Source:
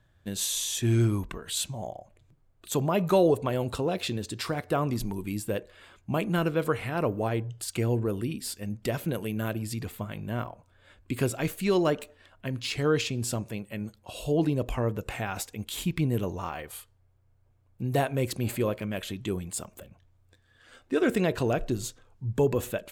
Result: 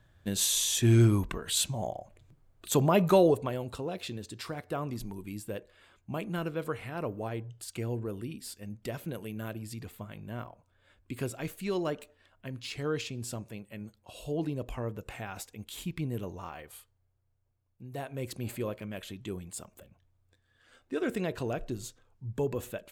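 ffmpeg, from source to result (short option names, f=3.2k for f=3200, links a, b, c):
-af "volume=10.5dB,afade=t=out:st=2.96:d=0.66:silence=0.334965,afade=t=out:st=16.72:d=1.18:silence=0.398107,afade=t=in:st=17.9:d=0.45:silence=0.375837"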